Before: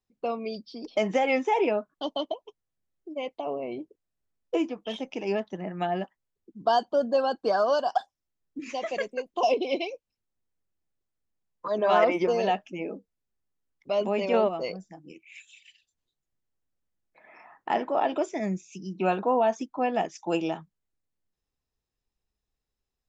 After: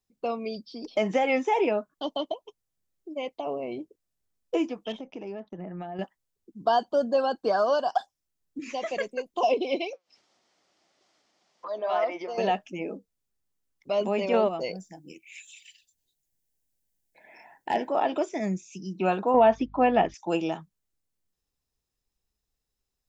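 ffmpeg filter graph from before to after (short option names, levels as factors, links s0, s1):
-filter_complex "[0:a]asettb=1/sr,asplit=3[s0][s1][s2];[s0]atrim=end=4.924[s3];[s1]atrim=start=4.92:end=5.99,asetpts=PTS-STARTPTS,afade=t=in:d=0.004:c=qsin,afade=t=out:st=1.066:d=0.004:c=qsin,agate=range=0.1:threshold=0.00251:ratio=16:release=100:detection=peak,lowpass=f=1100:p=1,acompressor=threshold=0.02:ratio=5:attack=3.2:release=140:knee=1:detection=peak[s4];[s2]atrim=start=5.986[s5];[s3][s4]acrossfade=d=0.004:c1=hsin:c2=qsin[s6];[s6][s5]acrossfade=d=0.004:c1=qsin:c2=hsin,asettb=1/sr,asplit=3[s7][s8][s9];[s7]atrim=end=9.934[s10];[s8]atrim=start=9.93:end=12.38,asetpts=PTS-STARTPTS,afade=t=in:d=0.004:c=qsin,afade=t=out:st=2.446:d=0.004:c=qsin,acompressor=mode=upward:threshold=0.0708:ratio=2.5:attack=3.2:release=140:knee=2.83:detection=peak,highpass=460,equalizer=f=460:t=q:w=4:g=-6,equalizer=f=670:t=q:w=4:g=3,equalizer=f=1000:t=q:w=4:g=-3,equalizer=f=1600:t=q:w=4:g=-6,equalizer=f=2600:t=q:w=4:g=-5,equalizer=f=3900:t=q:w=4:g=-5,lowpass=f=5100:w=0.5412,lowpass=f=5100:w=1.3066,flanger=delay=4.8:depth=2.4:regen=87:speed=1.9:shape=triangular[s11];[s9]atrim=start=12.376[s12];[s10][s11]acrossfade=d=0.004:c1=hsin:c2=qsin[s13];[s13][s12]acrossfade=d=0.004:c1=qsin:c2=hsin,asettb=1/sr,asplit=3[s14][s15][s16];[s14]atrim=end=14.604[s17];[s15]atrim=start=14.6:end=17.89,asetpts=PTS-STARTPTS,afade=t=in:d=0.004:c=qsin,afade=t=out:st=3.286:d=0.004:c=qsin,highshelf=f=6700:g=9.5,asoftclip=type=hard:threshold=0.158,asuperstop=centerf=1200:order=4:qfactor=2.5[s18];[s16]atrim=start=17.886[s19];[s17][s18]acrossfade=d=0.004:c1=hsin:c2=qsin[s20];[s20][s19]acrossfade=d=0.004:c1=qsin:c2=hsin,asettb=1/sr,asplit=3[s21][s22][s23];[s21]atrim=end=19.344[s24];[s22]atrim=start=19.34:end=20.14,asetpts=PTS-STARTPTS,afade=t=in:d=0.004:c=qsin,afade=t=out:st=0.796:d=0.004:c=qsin,lowpass=f=3700:w=0.5412,lowpass=f=3700:w=1.3066,acontrast=26,aeval=exprs='val(0)+0.00316*(sin(2*PI*50*n/s)+sin(2*PI*2*50*n/s)/2+sin(2*PI*3*50*n/s)/3+sin(2*PI*4*50*n/s)/4+sin(2*PI*5*50*n/s)/5)':c=same[s25];[s23]atrim=start=20.136[s26];[s24][s25]acrossfade=d=0.004:c1=hsin:c2=qsin[s27];[s27][s26]acrossfade=d=0.004:c1=qsin:c2=hsin,acrossover=split=3600[s28][s29];[s29]acompressor=threshold=0.00251:ratio=4:attack=1:release=60[s30];[s28][s30]amix=inputs=2:normalize=0,bass=f=250:g=1,treble=f=4000:g=6"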